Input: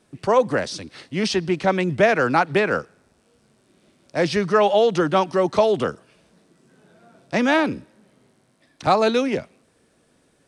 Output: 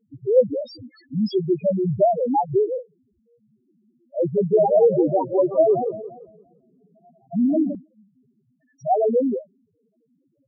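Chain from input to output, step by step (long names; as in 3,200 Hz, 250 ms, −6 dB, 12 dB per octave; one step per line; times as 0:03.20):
spectral peaks only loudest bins 1
0:04.20–0:07.75: feedback echo with a swinging delay time 172 ms, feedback 36%, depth 202 cents, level −10 dB
level +7.5 dB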